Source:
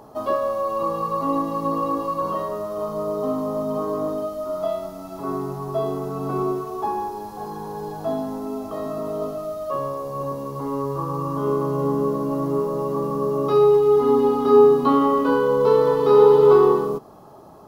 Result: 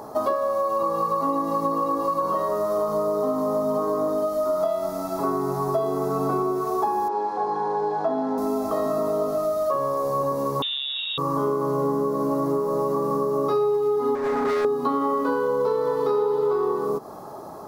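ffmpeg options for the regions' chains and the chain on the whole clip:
-filter_complex "[0:a]asettb=1/sr,asplit=3[a][b][c];[a]atrim=end=7.084[d];[b]atrim=start=7.08:end=8.38,asetpts=PTS-STARTPTS,afade=t=in:d=0.004:c=qsin,afade=t=out:st=1.296:d=0.004:c=qsin,highpass=240,lowpass=3k,asplit=2[e][f];[f]adelay=31,volume=-8dB[g];[e][g]amix=inputs=2:normalize=0,atrim=end_sample=57330[h];[c]atrim=start=8.376[i];[d][h]acrossfade=d=0.004:c1=hsin:c2=qsin[j];[j][i]acrossfade=d=0.004:c1=qsin:c2=hsin,asettb=1/sr,asplit=3[k][l][m];[k]atrim=end=10.624[n];[l]atrim=start=10.62:end=11.18,asetpts=PTS-STARTPTS,afade=t=in:d=0.004:c=qsin,afade=t=out:st=0.556:d=0.004:c=qsin,acrusher=bits=8:dc=4:mix=0:aa=0.000001,lowpass=f=3.3k:t=q:w=0.5098,lowpass=f=3.3k:t=q:w=0.6013,lowpass=f=3.3k:t=q:w=0.9,lowpass=f=3.3k:t=q:w=2.563,afreqshift=-3900[o];[m]atrim=start=11.176[p];[n][o]acrossfade=d=0.004:c1=hsin:c2=qsin[q];[q][p]acrossfade=d=0.004:c1=qsin:c2=hsin,asettb=1/sr,asplit=3[r][s][t];[r]atrim=end=14.154[u];[s]atrim=start=14.15:end=14.65,asetpts=PTS-STARTPTS,afade=t=in:d=0.004:c=qsin,afade=t=out:st=0.496:d=0.004:c=qsin,acrossover=split=2600[v][w];[w]acompressor=threshold=-58dB:ratio=4:attack=1:release=60[x];[v][x]amix=inputs=2:normalize=0,asoftclip=type=hard:threshold=-21dB[y];[t]atrim=start=14.646[z];[u][y]acrossfade=d=0.004:c1=hsin:c2=qsin[aa];[aa][z]acrossfade=d=0.004:c1=qsin:c2=hsin,lowshelf=f=200:g=-10,acompressor=threshold=-29dB:ratio=10,equalizer=f=2.9k:w=2.6:g=-10,volume=9dB"

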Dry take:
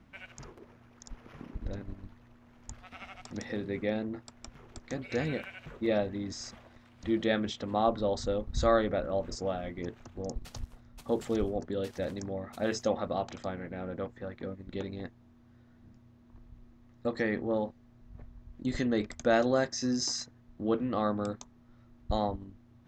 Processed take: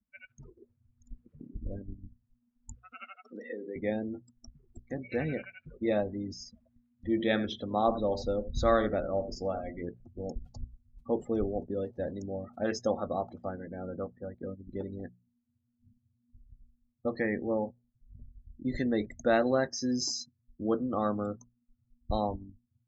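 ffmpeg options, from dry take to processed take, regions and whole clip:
-filter_complex "[0:a]asettb=1/sr,asplit=3[a][b][c];[a]atrim=end=0.584[d];[b]atrim=start=0.58:end=1.08,asetpts=PTS-STARTPTS,afade=t=in:d=0.004:c=qsin,afade=t=out:st=0.496:d=0.004:c=qsin,asubboost=boost=10.5:cutoff=170,acompressor=mode=upward:threshold=-59dB:ratio=2.5:attack=3.2:release=140:knee=2.83:detection=peak[e];[c]atrim=start=1.076[f];[d][e]acrossfade=d=0.004:c1=hsin:c2=qsin[g];[g][f]acrossfade=d=0.004:c1=qsin:c2=hsin,asettb=1/sr,asplit=3[h][i][j];[h]atrim=end=2.764[k];[i]atrim=start=2.76:end=3.76,asetpts=PTS-STARTPTS,afade=t=in:d=0.004:c=qsin,afade=t=out:st=0.996:d=0.004:c=qsin,acompressor=threshold=-36dB:ratio=12:attack=3.2:release=140:knee=1:detection=peak,highpass=f=230:w=0.5412,highpass=f=230:w=1.3066,equalizer=f=470:t=q:w=4:g=9,equalizer=f=820:t=q:w=4:g=-6,equalizer=f=1.4k:t=q:w=4:g=7,equalizer=f=2.8k:t=q:w=4:g=5,lowpass=f=5.6k:w=0.5412,lowpass=f=5.6k:w=1.3066[l];[j]atrim=start=3.756[m];[k][l]acrossfade=d=0.004:c1=hsin:c2=qsin[n];[n][m]acrossfade=d=0.004:c1=qsin:c2=hsin,asettb=1/sr,asplit=3[o][p][q];[o]atrim=end=6.534[r];[p]atrim=start=6.53:end=9.85,asetpts=PTS-STARTPTS,afade=t=in:d=0.004:c=qsin,afade=t=out:st=3.316:d=0.004:c=qsin,adynamicequalizer=threshold=0.00447:dfrequency=2500:dqfactor=2:tfrequency=2500:tqfactor=2:attack=5:release=100:ratio=0.375:range=1.5:mode=boostabove:tftype=bell,aecho=1:1:83:0.251,atrim=end_sample=146412[s];[q]atrim=start=9.846[t];[r][s]acrossfade=d=0.004:c1=hsin:c2=qsin[u];[u][t]acrossfade=d=0.004:c1=qsin:c2=hsin,afftdn=nr=36:nf=-40,bandreject=f=60:t=h:w=6,bandreject=f=120:t=h:w=6,bandreject=f=180:t=h:w=6"

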